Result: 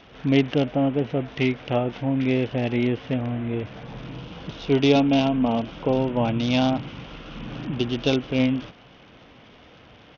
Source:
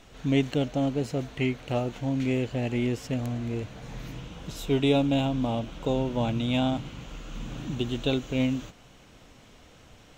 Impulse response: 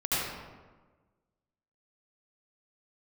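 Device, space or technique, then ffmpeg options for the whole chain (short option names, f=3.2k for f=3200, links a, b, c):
Bluetooth headset: -filter_complex "[0:a]asettb=1/sr,asplit=3[a][b][c];[a]atrim=end=3.844[d];[b]atrim=start=3.84:end=4.31,asetpts=PTS-STARTPTS,afade=t=in:d=0.004:c=qsin,afade=t=out:st=0.466:d=0.004:c=qsin,equalizer=f=2k:w=2.3:g=-5.5[e];[c]atrim=start=4.306[f];[d][e]acrossfade=d=0.004:c1=hsin:c2=qsin[g];[g][f]acrossfade=d=0.004:c1=qsin:c2=hsin,asettb=1/sr,asplit=3[h][i][j];[h]atrim=end=4.954[k];[i]atrim=start=4.95:end=5.62,asetpts=PTS-STARTPTS,afade=t=in:d=0.004:c=qsin,afade=t=out:st=0.666:d=0.004:c=qsin,aecho=1:1:4.5:0.44,atrim=end_sample=29547[l];[j]atrim=start=5.616[m];[k][l]acrossfade=d=0.004:c1=hsin:c2=qsin[n];[n][m]acrossfade=d=0.004:c1=qsin:c2=hsin,highpass=f=120:p=1,aresample=8000,aresample=44100,volume=5.5dB" -ar 48000 -c:a sbc -b:a 64k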